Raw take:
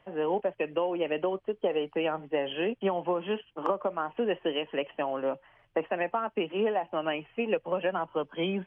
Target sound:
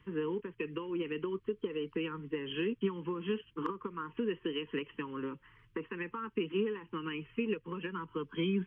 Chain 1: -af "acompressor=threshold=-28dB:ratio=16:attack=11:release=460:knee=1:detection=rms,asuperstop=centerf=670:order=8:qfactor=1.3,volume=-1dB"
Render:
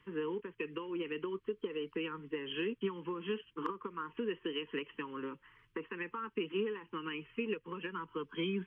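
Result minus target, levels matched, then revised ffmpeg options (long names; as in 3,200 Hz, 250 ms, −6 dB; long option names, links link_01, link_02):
125 Hz band −4.0 dB
-af "acompressor=threshold=-28dB:ratio=16:attack=11:release=460:knee=1:detection=rms,asuperstop=centerf=670:order=8:qfactor=1.3,equalizer=frequency=64:width=0.33:gain=10,volume=-1dB"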